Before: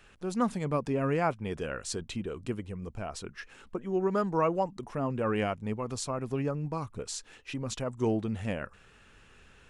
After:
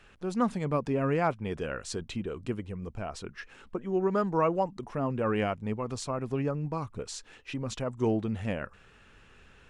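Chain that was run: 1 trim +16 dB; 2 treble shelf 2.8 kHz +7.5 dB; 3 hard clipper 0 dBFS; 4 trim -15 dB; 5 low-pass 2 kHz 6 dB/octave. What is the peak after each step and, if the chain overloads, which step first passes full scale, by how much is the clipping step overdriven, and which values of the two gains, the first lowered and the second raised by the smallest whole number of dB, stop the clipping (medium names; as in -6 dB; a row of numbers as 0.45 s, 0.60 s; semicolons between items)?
+0.5 dBFS, +3.5 dBFS, 0.0 dBFS, -15.0 dBFS, -15.5 dBFS; step 1, 3.5 dB; step 1 +12 dB, step 4 -11 dB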